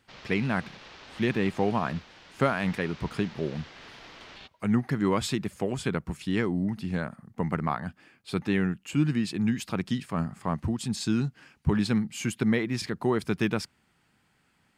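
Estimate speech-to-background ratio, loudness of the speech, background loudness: 18.0 dB, −29.0 LKFS, −47.0 LKFS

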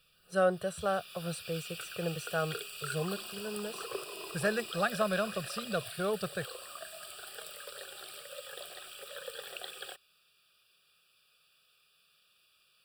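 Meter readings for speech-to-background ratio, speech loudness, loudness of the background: 7.5 dB, −35.0 LKFS, −42.5 LKFS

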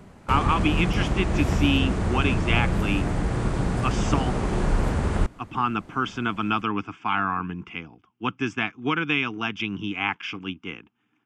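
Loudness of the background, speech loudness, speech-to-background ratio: −26.0 LKFS, −27.0 LKFS, −1.0 dB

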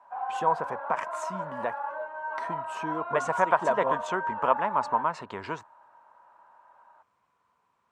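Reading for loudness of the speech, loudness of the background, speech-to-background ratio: −29.5 LKFS, −34.0 LKFS, 4.5 dB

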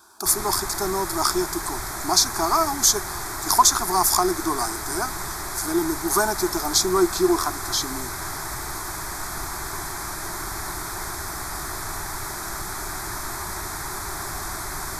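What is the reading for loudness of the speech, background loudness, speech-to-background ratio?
−21.5 LKFS, −30.0 LKFS, 8.5 dB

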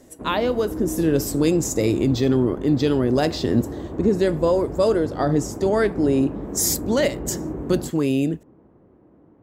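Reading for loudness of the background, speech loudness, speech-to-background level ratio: −32.0 LKFS, −21.5 LKFS, 10.5 dB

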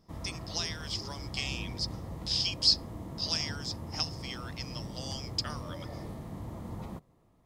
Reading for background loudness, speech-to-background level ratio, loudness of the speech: −42.0 LKFS, 9.0 dB, −33.0 LKFS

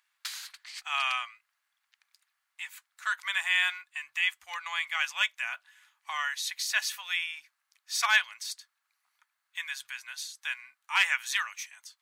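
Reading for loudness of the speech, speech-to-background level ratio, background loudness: −30.0 LKFS, 12.5 dB, −42.5 LKFS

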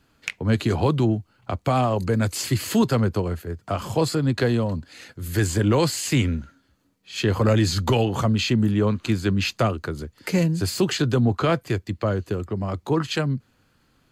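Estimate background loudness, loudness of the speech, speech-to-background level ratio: −34.0 LKFS, −23.0 LKFS, 11.0 dB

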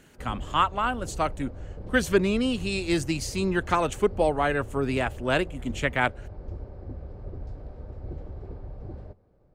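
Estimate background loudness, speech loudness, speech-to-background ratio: −41.0 LKFS, −26.5 LKFS, 14.5 dB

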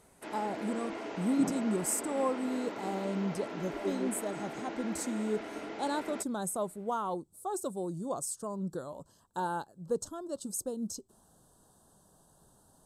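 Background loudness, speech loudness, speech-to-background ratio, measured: −41.0 LKFS, −35.5 LKFS, 5.5 dB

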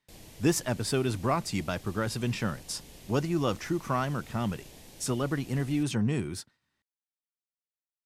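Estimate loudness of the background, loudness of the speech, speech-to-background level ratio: −50.0 LKFS, −30.5 LKFS, 19.5 dB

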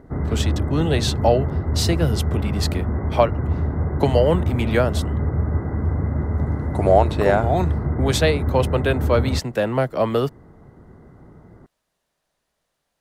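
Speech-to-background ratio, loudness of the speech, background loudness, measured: 2.0 dB, −22.0 LKFS, −24.0 LKFS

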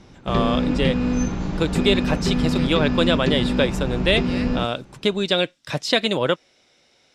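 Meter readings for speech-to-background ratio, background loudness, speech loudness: 0.5 dB, −23.5 LKFS, −23.0 LKFS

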